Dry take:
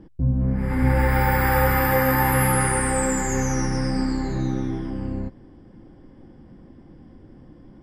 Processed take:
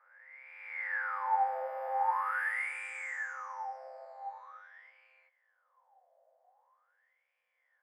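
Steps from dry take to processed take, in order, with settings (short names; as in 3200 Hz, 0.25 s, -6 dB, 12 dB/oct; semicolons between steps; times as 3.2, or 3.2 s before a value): spectral swells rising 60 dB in 1.84 s; Chebyshev high-pass 490 Hz, order 10; wah 0.44 Hz 640–2400 Hz, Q 19; gain +2.5 dB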